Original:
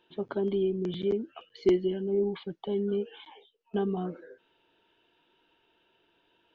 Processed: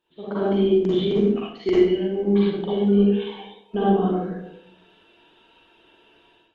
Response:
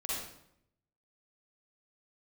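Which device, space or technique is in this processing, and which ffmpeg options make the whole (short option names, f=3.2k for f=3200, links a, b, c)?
speakerphone in a meeting room: -filter_complex "[0:a]asplit=3[a][b][c];[a]afade=t=out:st=1.36:d=0.02[d];[b]adynamicequalizer=threshold=0.00251:dfrequency=2200:dqfactor=1.4:tfrequency=2200:tqfactor=1.4:attack=5:release=100:ratio=0.375:range=4:mode=boostabove:tftype=bell,afade=t=in:st=1.36:d=0.02,afade=t=out:st=1.99:d=0.02[e];[c]afade=t=in:st=1.99:d=0.02[f];[d][e][f]amix=inputs=3:normalize=0[g];[1:a]atrim=start_sample=2205[h];[g][h]afir=irnorm=-1:irlink=0,dynaudnorm=f=130:g=5:m=14.5dB,volume=-5dB" -ar 48000 -c:a libopus -b:a 24k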